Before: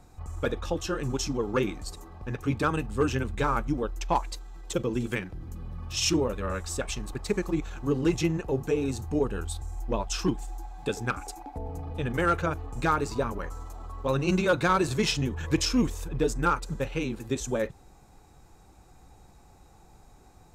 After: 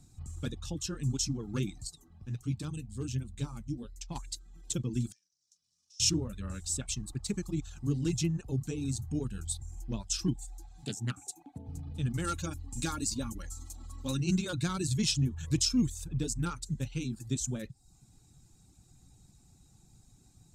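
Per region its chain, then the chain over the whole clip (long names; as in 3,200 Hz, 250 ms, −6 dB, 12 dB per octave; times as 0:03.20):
0:01.87–0:04.16: flanger 1.4 Hz, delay 5 ms, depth 5.8 ms, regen +72% + dynamic equaliser 1,500 Hz, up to −8 dB, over −47 dBFS, Q 1.7
0:05.12–0:06.00: variable-slope delta modulation 64 kbit/s + resonant band-pass 5,600 Hz, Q 5.3 + downward compressor 4 to 1, threshold −59 dBFS
0:10.84–0:11.68: high-pass filter 96 Hz 24 dB per octave + parametric band 5,000 Hz −8.5 dB 0.2 octaves + highs frequency-modulated by the lows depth 0.25 ms
0:12.24–0:14.20: high-shelf EQ 3,800 Hz +8 dB + comb filter 3.6 ms, depth 56%
whole clip: reverb reduction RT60 0.52 s; octave-band graphic EQ 125/250/500/1,000/2,000/4,000/8,000 Hz +10/+5/−10/−8/−5/+5/+11 dB; level −7.5 dB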